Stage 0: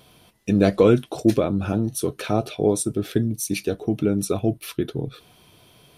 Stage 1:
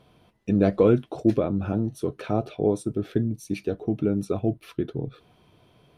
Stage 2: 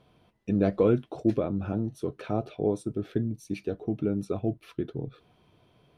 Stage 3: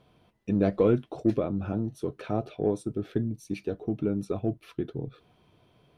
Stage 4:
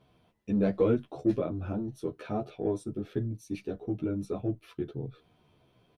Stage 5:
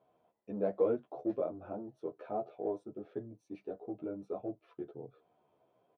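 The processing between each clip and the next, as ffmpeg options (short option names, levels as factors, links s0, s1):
-af "lowpass=f=1400:p=1,volume=0.75"
-af "highshelf=f=7900:g=-5.5,volume=0.631"
-af "aeval=exprs='0.299*(cos(1*acos(clip(val(0)/0.299,-1,1)))-cos(1*PI/2))+0.00299*(cos(8*acos(clip(val(0)/0.299,-1,1)))-cos(8*PI/2))':c=same"
-filter_complex "[0:a]asplit=2[s0][s1];[s1]adelay=11.9,afreqshift=-1.6[s2];[s0][s2]amix=inputs=2:normalize=1"
-af "bandpass=f=660:t=q:w=1.6:csg=0"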